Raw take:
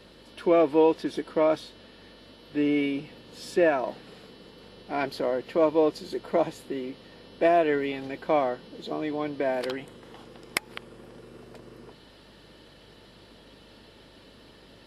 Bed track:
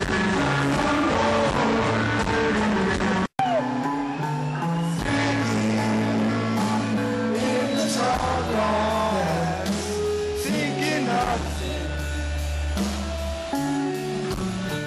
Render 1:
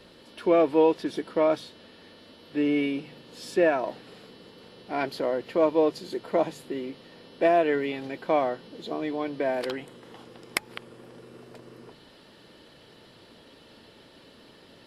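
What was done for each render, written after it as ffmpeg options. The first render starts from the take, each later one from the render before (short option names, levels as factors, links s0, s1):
-af "bandreject=f=50:t=h:w=4,bandreject=f=100:t=h:w=4,bandreject=f=150:t=h:w=4,bandreject=f=200:t=h:w=4"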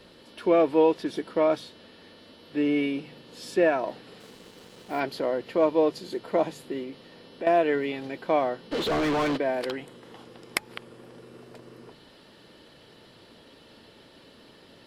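-filter_complex "[0:a]asettb=1/sr,asplit=3[s0][s1][s2];[s0]atrim=end=4.204[s3];[s1]atrim=start=4.2:end=5,asetpts=PTS-STARTPTS,afade=t=in:d=0.004:c=qsin,afade=t=out:st=0.796:d=0.004:c=qsin,acrusher=bits=7:mix=0:aa=0.5[s4];[s2]atrim=start=4.996[s5];[s3][s4]acrossfade=d=0.004:c1=hsin:c2=qsin[s6];[s6][s5]acrossfade=d=0.004:c1=qsin:c2=hsin,asettb=1/sr,asplit=3[s7][s8][s9];[s7]atrim=end=6.834[s10];[s8]atrim=start=6.83:end=7.47,asetpts=PTS-STARTPTS,afade=t=in:d=0.004:c=qsin,afade=t=out:st=0.636:d=0.004:c=qsin,acompressor=threshold=0.02:ratio=2.5:attack=3.2:release=140:knee=1:detection=peak[s11];[s9]atrim=start=7.466[s12];[s10][s11]acrossfade=d=0.004:c1=hsin:c2=qsin[s13];[s13][s12]acrossfade=d=0.004:c1=qsin:c2=hsin,asplit=3[s14][s15][s16];[s14]afade=t=out:st=8.71:d=0.02[s17];[s15]asplit=2[s18][s19];[s19]highpass=f=720:p=1,volume=50.1,asoftclip=type=tanh:threshold=0.119[s20];[s18][s20]amix=inputs=2:normalize=0,lowpass=f=2300:p=1,volume=0.501,afade=t=in:st=8.71:d=0.02,afade=t=out:st=9.36:d=0.02[s21];[s16]afade=t=in:st=9.36:d=0.02[s22];[s17][s21][s22]amix=inputs=3:normalize=0"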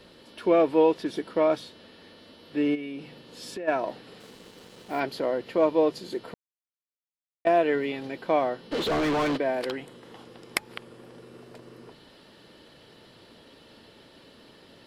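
-filter_complex "[0:a]asplit=3[s0][s1][s2];[s0]afade=t=out:st=2.74:d=0.02[s3];[s1]acompressor=threshold=0.0224:ratio=6:attack=3.2:release=140:knee=1:detection=peak,afade=t=in:st=2.74:d=0.02,afade=t=out:st=3.67:d=0.02[s4];[s2]afade=t=in:st=3.67:d=0.02[s5];[s3][s4][s5]amix=inputs=3:normalize=0,asplit=3[s6][s7][s8];[s6]atrim=end=6.34,asetpts=PTS-STARTPTS,afade=t=out:st=6.336:d=0.004:c=hsin[s9];[s7]atrim=start=6.34:end=7.45,asetpts=PTS-STARTPTS,volume=0[s10];[s8]atrim=start=7.45,asetpts=PTS-STARTPTS,afade=t=in:d=0.004:c=hsin[s11];[s9][s10][s11]concat=n=3:v=0:a=1"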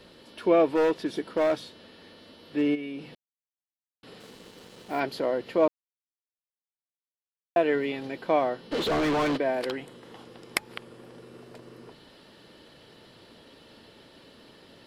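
-filter_complex "[0:a]asettb=1/sr,asplit=3[s0][s1][s2];[s0]atrim=end=0.754[s3];[s1]atrim=start=0.75:end=2.62,asetpts=PTS-STARTPTS,afade=t=in:d=0.004:c=qsin,afade=t=out:st=1.866:d=0.004:c=qsin,asoftclip=type=hard:threshold=0.112[s4];[s2]atrim=start=2.616[s5];[s3][s4]acrossfade=d=0.004:c1=hsin:c2=qsin[s6];[s6][s5]acrossfade=d=0.004:c1=qsin:c2=hsin,asplit=5[s7][s8][s9][s10][s11];[s7]atrim=end=3.15,asetpts=PTS-STARTPTS,afade=t=out:st=3.146:d=0.004:c=hsin[s12];[s8]atrim=start=3.15:end=4.03,asetpts=PTS-STARTPTS,volume=0[s13];[s9]atrim=start=4.03:end=5.68,asetpts=PTS-STARTPTS,afade=t=in:d=0.004:c=hsin,afade=t=out:st=1.646:d=0.004:c=hsin[s14];[s10]atrim=start=5.68:end=7.56,asetpts=PTS-STARTPTS,volume=0[s15];[s11]atrim=start=7.56,asetpts=PTS-STARTPTS,afade=t=in:d=0.004:c=hsin[s16];[s12][s13][s14][s15][s16]concat=n=5:v=0:a=1"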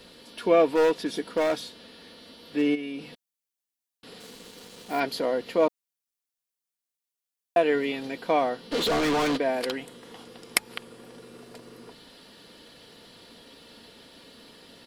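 -af "highshelf=f=3600:g=8.5,aecho=1:1:4.2:0.31"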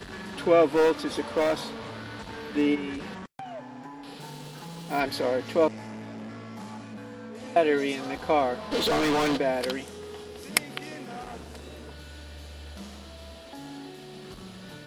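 -filter_complex "[1:a]volume=0.141[s0];[0:a][s0]amix=inputs=2:normalize=0"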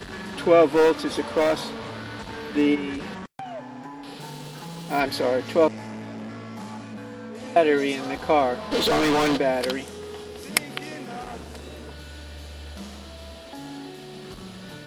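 -af "volume=1.5,alimiter=limit=0.891:level=0:latency=1"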